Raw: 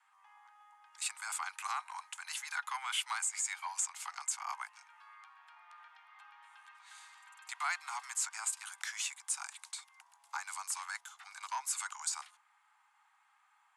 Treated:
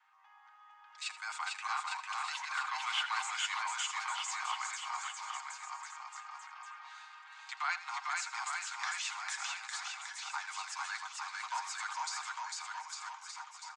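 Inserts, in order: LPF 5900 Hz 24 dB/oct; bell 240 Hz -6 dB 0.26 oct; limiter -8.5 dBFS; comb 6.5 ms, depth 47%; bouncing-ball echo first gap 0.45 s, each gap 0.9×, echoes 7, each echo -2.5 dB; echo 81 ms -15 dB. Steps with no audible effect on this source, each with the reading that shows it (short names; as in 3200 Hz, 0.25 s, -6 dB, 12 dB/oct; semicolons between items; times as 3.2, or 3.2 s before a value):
bell 240 Hz: input band starts at 600 Hz; limiter -8.5 dBFS: input peak -22.0 dBFS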